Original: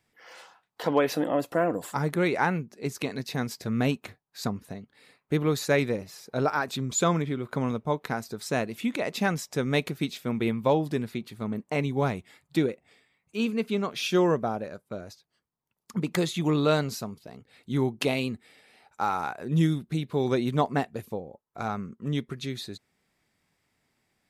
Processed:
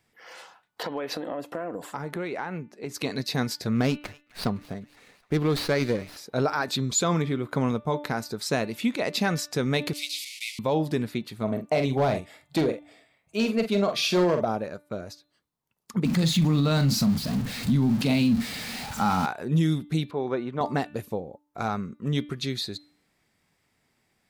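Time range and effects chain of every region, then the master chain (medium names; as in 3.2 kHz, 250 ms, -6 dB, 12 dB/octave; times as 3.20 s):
0.83–2.94 s: high-pass 210 Hz 6 dB/octave + treble shelf 4.3 kHz -9.5 dB + compression, threshold -31 dBFS
3.75–6.17 s: feedback echo behind a high-pass 256 ms, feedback 64%, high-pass 1.5 kHz, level -20 dB + sliding maximum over 5 samples
9.93–10.59 s: one-bit delta coder 64 kbps, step -33 dBFS + steep high-pass 2.1 kHz 96 dB/octave + companded quantiser 8-bit
11.43–14.45 s: hard clipper -20 dBFS + peaking EQ 640 Hz +13.5 dB 0.32 oct + doubling 45 ms -8.5 dB
16.05–19.26 s: jump at every zero crossing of -35 dBFS + resonant low shelf 290 Hz +7 dB, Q 3 + doubling 43 ms -11.5 dB
20.11–20.61 s: low-pass 1.1 kHz + tilt EQ +4 dB/octave
whole clip: de-hum 294.7 Hz, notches 14; dynamic bell 4.5 kHz, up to +7 dB, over -53 dBFS, Q 2.7; peak limiter -18 dBFS; trim +3 dB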